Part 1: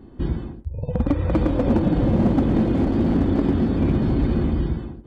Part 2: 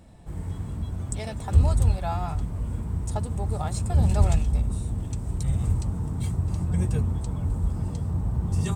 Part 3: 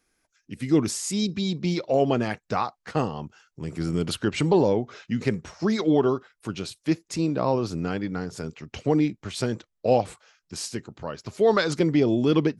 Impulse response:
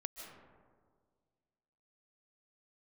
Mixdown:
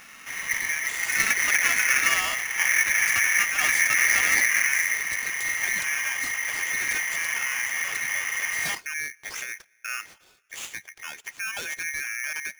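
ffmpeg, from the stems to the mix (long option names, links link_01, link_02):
-filter_complex "[0:a]adelay=200,volume=-7.5dB,asplit=2[link_01][link_02];[link_02]volume=-7.5dB[link_03];[1:a]asplit=2[link_04][link_05];[link_05]highpass=frequency=720:poles=1,volume=24dB,asoftclip=type=tanh:threshold=-7dB[link_06];[link_04][link_06]amix=inputs=2:normalize=0,lowpass=frequency=6300:poles=1,volume=-6dB,asoftclip=type=tanh:threshold=-21dB,volume=-4.5dB[link_07];[2:a]alimiter=limit=-20.5dB:level=0:latency=1:release=196,lowpass=frequency=4300:width_type=q:width=2.1,volume=-4.5dB,asplit=3[link_08][link_09][link_10];[link_08]atrim=end=2.02,asetpts=PTS-STARTPTS,afade=type=out:start_time=2.016:duration=0.004:curve=hsin[link_11];[link_09]atrim=start=2.02:end=2.59,asetpts=PTS-STARTPTS,volume=0[link_12];[link_10]atrim=start=2.59,asetpts=PTS-STARTPTS,afade=type=in:duration=0.004:curve=hsin[link_13];[link_11][link_12][link_13]concat=n=3:v=0:a=1,asplit=3[link_14][link_15][link_16];[link_15]volume=-22dB[link_17];[link_16]apad=whole_len=231996[link_18];[link_01][link_18]sidechaingate=range=-33dB:threshold=-56dB:ratio=16:detection=peak[link_19];[3:a]atrim=start_sample=2205[link_20];[link_03][link_17]amix=inputs=2:normalize=0[link_21];[link_21][link_20]afir=irnorm=-1:irlink=0[link_22];[link_19][link_07][link_14][link_22]amix=inputs=4:normalize=0,equalizer=frequency=140:width_type=o:width=0.62:gain=5,aeval=exprs='val(0)*sgn(sin(2*PI*2000*n/s))':channel_layout=same"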